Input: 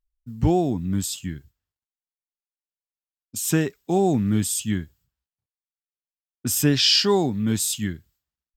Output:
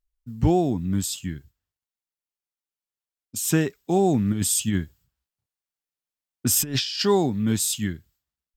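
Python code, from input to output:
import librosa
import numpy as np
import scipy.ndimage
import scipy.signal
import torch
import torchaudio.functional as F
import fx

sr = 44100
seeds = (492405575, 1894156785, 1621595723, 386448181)

y = fx.over_compress(x, sr, threshold_db=-23.0, ratio=-0.5, at=(4.32, 7.02))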